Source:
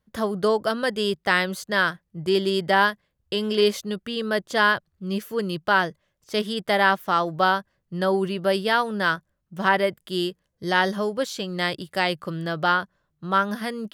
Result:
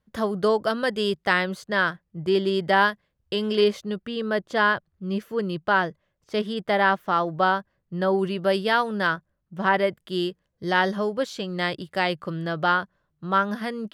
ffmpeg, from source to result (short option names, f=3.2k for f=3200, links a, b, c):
-af "asetnsamples=n=441:p=0,asendcmd='1.33 lowpass f 2800;2.63 lowpass f 4700;3.64 lowpass f 2200;8.19 lowpass f 5500;9.07 lowpass f 2100;9.74 lowpass f 3600',lowpass=f=6k:p=1"